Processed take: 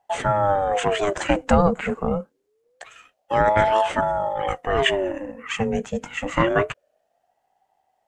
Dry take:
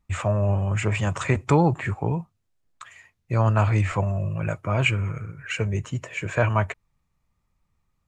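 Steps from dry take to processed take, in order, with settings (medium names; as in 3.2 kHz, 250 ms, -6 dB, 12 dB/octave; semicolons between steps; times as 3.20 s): ring modulator with a swept carrier 550 Hz, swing 40%, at 0.26 Hz; trim +4.5 dB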